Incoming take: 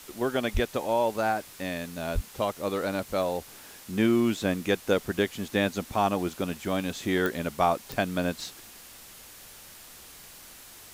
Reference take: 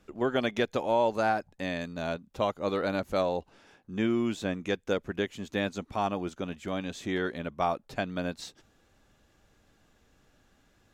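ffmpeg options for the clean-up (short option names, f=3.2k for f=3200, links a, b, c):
-filter_complex "[0:a]adeclick=t=4,asplit=3[a][b][c];[a]afade=t=out:st=0.53:d=0.02[d];[b]highpass=f=140:w=0.5412,highpass=f=140:w=1.3066,afade=t=in:st=0.53:d=0.02,afade=t=out:st=0.65:d=0.02[e];[c]afade=t=in:st=0.65:d=0.02[f];[d][e][f]amix=inputs=3:normalize=0,asplit=3[g][h][i];[g]afade=t=out:st=2.14:d=0.02[j];[h]highpass=f=140:w=0.5412,highpass=f=140:w=1.3066,afade=t=in:st=2.14:d=0.02,afade=t=out:st=2.26:d=0.02[k];[i]afade=t=in:st=2.26:d=0.02[l];[j][k][l]amix=inputs=3:normalize=0,afwtdn=0.0045,asetnsamples=n=441:p=0,asendcmd='3.41 volume volume -4.5dB',volume=0dB"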